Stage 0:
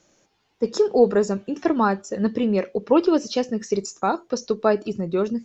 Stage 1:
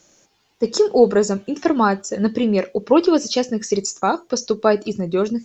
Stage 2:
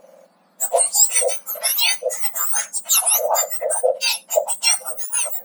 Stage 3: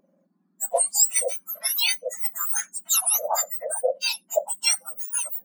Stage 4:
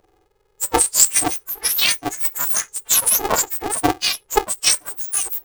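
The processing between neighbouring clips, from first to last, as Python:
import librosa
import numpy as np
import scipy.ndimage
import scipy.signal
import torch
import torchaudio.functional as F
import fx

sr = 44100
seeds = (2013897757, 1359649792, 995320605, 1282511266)

y1 = fx.high_shelf(x, sr, hz=4600.0, db=9.0)
y1 = y1 * 10.0 ** (3.0 / 20.0)
y2 = fx.octave_mirror(y1, sr, pivot_hz=1900.0)
y2 = y2 * 10.0 ** (5.0 / 20.0)
y3 = fx.bin_expand(y2, sr, power=1.5)
y3 = y3 * 10.0 ** (-3.5 / 20.0)
y4 = y3 * np.sign(np.sin(2.0 * np.pi * 210.0 * np.arange(len(y3)) / sr))
y4 = y4 * 10.0 ** (5.5 / 20.0)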